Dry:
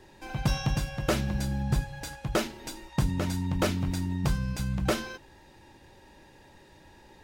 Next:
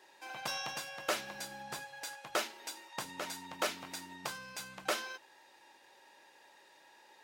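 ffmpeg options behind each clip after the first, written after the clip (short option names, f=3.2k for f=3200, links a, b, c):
-af "highpass=660,volume=-2.5dB"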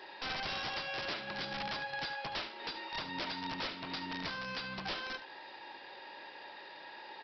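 -af "acompressor=threshold=-46dB:ratio=4,aresample=11025,aeval=exprs='(mod(141*val(0)+1,2)-1)/141':c=same,aresample=44100,aecho=1:1:73:0.237,volume=11.5dB"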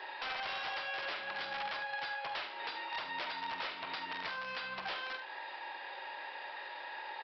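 -filter_complex "[0:a]acrossover=split=500 3800:gain=0.158 1 0.178[a][b][c];[a][b][c]amix=inputs=3:normalize=0,acompressor=threshold=-47dB:ratio=2,asplit=2[d][e];[e]adelay=46,volume=-10.5dB[f];[d][f]amix=inputs=2:normalize=0,volume=6.5dB"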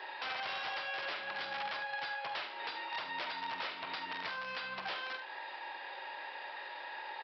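-af "highpass=65"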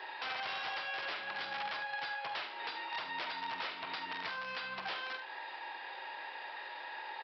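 -af "bandreject=f=570:w=13"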